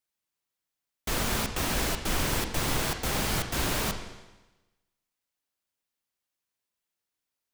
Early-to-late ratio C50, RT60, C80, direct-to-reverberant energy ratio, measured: 8.5 dB, 1.1 s, 10.0 dB, 6.0 dB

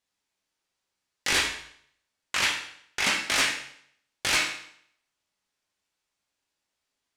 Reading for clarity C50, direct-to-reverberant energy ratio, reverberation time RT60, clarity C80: 5.5 dB, −1.0 dB, 0.65 s, 9.0 dB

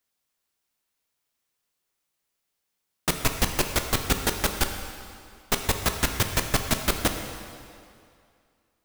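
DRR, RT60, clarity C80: 5.0 dB, 2.4 s, 7.5 dB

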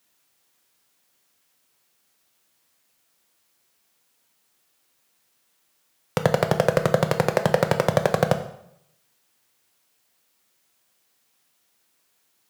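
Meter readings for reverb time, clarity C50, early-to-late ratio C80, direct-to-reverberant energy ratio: 0.75 s, 11.0 dB, 13.5 dB, 6.5 dB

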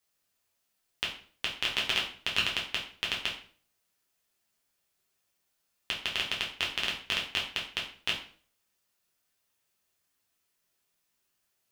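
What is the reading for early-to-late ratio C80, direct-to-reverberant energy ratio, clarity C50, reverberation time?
12.0 dB, −3.5 dB, 7.5 dB, 0.45 s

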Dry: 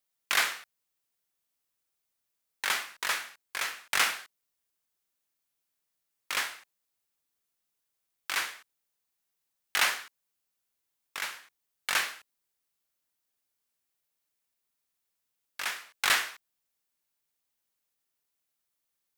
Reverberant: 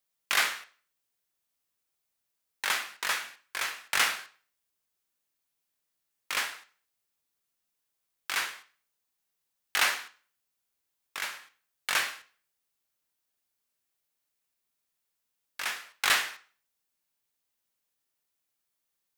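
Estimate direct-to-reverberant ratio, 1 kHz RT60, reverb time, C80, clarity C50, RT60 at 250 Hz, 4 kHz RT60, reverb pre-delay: 9.0 dB, 0.40 s, 0.45 s, 21.0 dB, 16.0 dB, 0.45 s, 0.40 s, 5 ms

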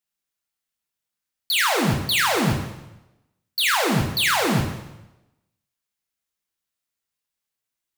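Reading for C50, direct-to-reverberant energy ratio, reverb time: 6.0 dB, 1.5 dB, 0.95 s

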